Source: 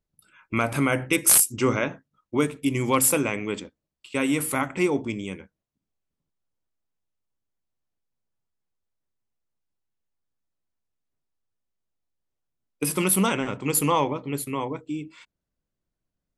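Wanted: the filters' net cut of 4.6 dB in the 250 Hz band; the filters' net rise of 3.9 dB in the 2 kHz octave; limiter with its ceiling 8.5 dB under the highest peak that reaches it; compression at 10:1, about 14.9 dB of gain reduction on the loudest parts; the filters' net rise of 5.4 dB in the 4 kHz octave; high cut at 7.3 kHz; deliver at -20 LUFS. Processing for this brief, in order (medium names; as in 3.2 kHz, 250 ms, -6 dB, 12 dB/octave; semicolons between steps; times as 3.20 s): low-pass 7.3 kHz; peaking EQ 250 Hz -6 dB; peaking EQ 2 kHz +3 dB; peaking EQ 4 kHz +6.5 dB; compression 10:1, threshold -31 dBFS; trim +17.5 dB; peak limiter -6.5 dBFS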